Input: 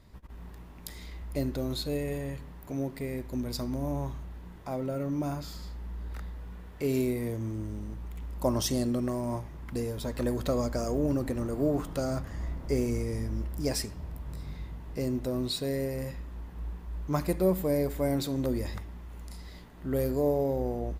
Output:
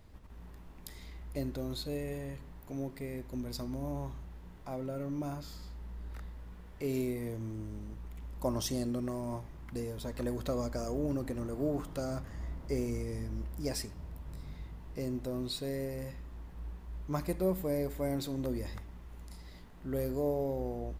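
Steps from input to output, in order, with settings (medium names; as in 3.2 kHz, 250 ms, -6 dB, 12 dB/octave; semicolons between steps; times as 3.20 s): added noise brown -50 dBFS; trim -5.5 dB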